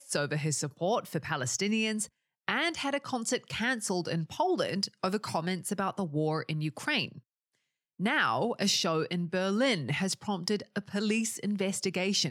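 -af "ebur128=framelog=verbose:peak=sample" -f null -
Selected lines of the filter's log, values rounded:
Integrated loudness:
  I:         -30.8 LUFS
  Threshold: -40.9 LUFS
Loudness range:
  LRA:         2.4 LU
  Threshold: -51.0 LUFS
  LRA low:   -32.0 LUFS
  LRA high:  -29.6 LUFS
Sample peak:
  Peak:      -12.0 dBFS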